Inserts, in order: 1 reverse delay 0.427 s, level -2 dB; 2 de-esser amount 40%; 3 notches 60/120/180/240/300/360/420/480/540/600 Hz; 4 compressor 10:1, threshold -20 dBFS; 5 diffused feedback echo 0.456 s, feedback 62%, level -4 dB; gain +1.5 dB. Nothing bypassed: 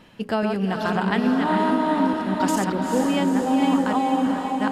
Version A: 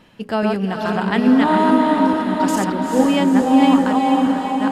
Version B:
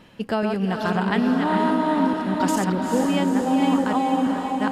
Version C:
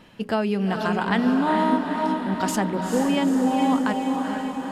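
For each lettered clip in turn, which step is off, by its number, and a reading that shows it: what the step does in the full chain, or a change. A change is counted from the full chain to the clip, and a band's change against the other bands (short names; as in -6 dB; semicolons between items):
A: 4, mean gain reduction 3.5 dB; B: 3, 125 Hz band +1.5 dB; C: 1, momentary loudness spread change +1 LU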